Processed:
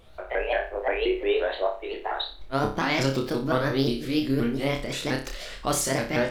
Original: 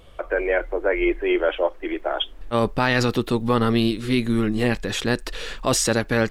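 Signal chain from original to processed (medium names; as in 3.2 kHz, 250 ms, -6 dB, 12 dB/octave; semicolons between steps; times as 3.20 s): sawtooth pitch modulation +5 st, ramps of 176 ms; flutter echo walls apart 5.1 m, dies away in 0.36 s; trim -5 dB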